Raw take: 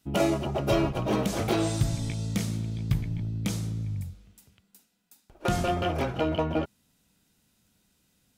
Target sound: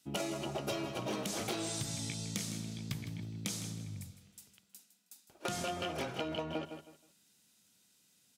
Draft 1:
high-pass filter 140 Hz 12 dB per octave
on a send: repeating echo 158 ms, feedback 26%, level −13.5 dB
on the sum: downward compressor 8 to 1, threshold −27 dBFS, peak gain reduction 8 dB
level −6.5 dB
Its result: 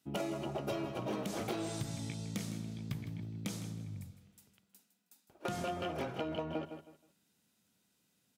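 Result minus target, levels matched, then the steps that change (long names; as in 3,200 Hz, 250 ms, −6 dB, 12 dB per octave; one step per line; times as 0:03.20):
8,000 Hz band −7.0 dB
add after high-pass filter: parametric band 7,000 Hz +10 dB 2.9 octaves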